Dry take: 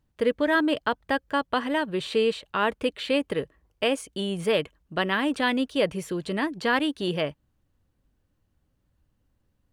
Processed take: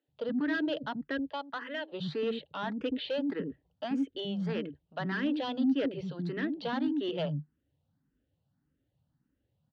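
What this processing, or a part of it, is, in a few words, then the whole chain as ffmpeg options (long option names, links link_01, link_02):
barber-pole phaser into a guitar amplifier: -filter_complex "[0:a]asettb=1/sr,asplit=3[link_01][link_02][link_03];[link_01]atrim=end=1.284[link_04];[link_02]atrim=start=1.28:end=1.92,asetpts=PTS-STARTPTS,afade=type=in:duration=0.004:curve=qsin,afade=type=out:start_time=0.636:duration=0.004:curve=qsin,highpass=650[link_05];[link_03]atrim=start=1.916[link_06];[link_04][link_05]acrossfade=duration=0.004:curve1=hsin:curve2=qsin[link_07];[link_07][link_06]acrossfade=duration=0.004:curve1=qsin:curve2=hsin,acrossover=split=290[link_08][link_09];[link_08]adelay=80[link_10];[link_10][link_09]amix=inputs=2:normalize=0,asplit=2[link_11][link_12];[link_12]afreqshift=1.7[link_13];[link_11][link_13]amix=inputs=2:normalize=1,asoftclip=type=tanh:threshold=-25.5dB,highpass=92,equalizer=frequency=150:width_type=q:width=4:gain=9,equalizer=frequency=270:width_type=q:width=4:gain=8,equalizer=frequency=1100:width_type=q:width=4:gain=-8,equalizer=frequency=2300:width_type=q:width=4:gain=-8,lowpass=frequency=4100:width=0.5412,lowpass=frequency=4100:width=1.3066,volume=-1.5dB"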